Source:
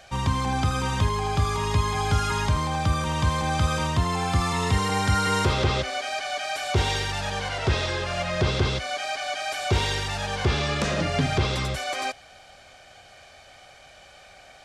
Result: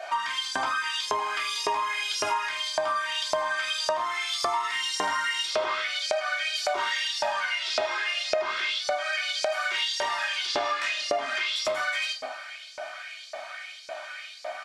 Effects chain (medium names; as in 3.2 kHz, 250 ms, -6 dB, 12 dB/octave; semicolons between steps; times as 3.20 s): treble shelf 3.5 kHz -9 dB; comb 3.2 ms, depth 54%; simulated room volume 350 m³, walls furnished, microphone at 3.3 m; LFO high-pass saw up 1.8 Hz 600–5500 Hz; compression 6:1, threshold -30 dBFS, peak gain reduction 17 dB; trim +4.5 dB